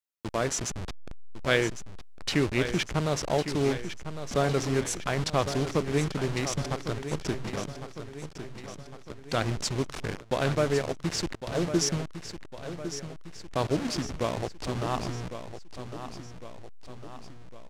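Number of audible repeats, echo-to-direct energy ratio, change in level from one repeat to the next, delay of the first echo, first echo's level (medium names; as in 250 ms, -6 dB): 4, -9.0 dB, -5.5 dB, 1105 ms, -10.5 dB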